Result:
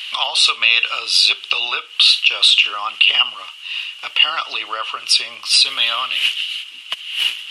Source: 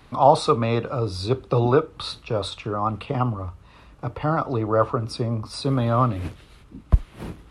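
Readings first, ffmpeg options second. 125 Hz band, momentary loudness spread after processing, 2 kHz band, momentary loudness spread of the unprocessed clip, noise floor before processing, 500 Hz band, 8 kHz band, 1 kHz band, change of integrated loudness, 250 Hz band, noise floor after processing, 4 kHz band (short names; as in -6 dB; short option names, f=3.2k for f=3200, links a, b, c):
under -35 dB, 13 LU, +20.5 dB, 13 LU, -50 dBFS, -15.5 dB, +17.0 dB, -3.0 dB, +8.5 dB, under -20 dB, -38 dBFS, +24.0 dB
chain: -af "acompressor=threshold=-21dB:ratio=6,highpass=f=2.9k:t=q:w=13,alimiter=level_in=20.5dB:limit=-1dB:release=50:level=0:latency=1,volume=-1dB"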